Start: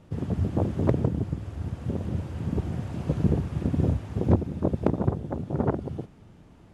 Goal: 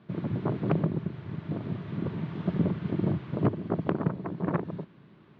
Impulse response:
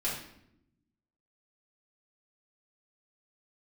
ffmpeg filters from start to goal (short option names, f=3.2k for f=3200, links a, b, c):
-af "highpass=130,equalizer=f=130:t=q:w=4:g=5,equalizer=f=200:t=q:w=4:g=-6,equalizer=f=400:t=q:w=4:g=-8,equalizer=f=620:t=q:w=4:g=-8,lowpass=f=2.9k:w=0.5412,lowpass=f=2.9k:w=1.3066,asetrate=55125,aresample=44100"